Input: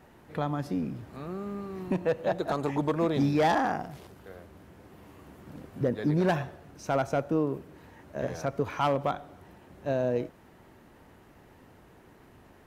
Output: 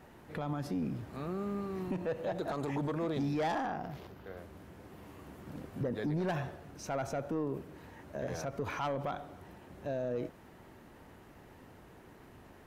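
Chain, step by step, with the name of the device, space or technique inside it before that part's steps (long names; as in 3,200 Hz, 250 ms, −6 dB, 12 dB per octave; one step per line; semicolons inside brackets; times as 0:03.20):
soft clipper into limiter (soft clipping −19 dBFS, distortion −19 dB; brickwall limiter −27.5 dBFS, peak gain reduction 7.5 dB)
0:03.66–0:04.37: parametric band 8,900 Hz −13 dB 0.89 octaves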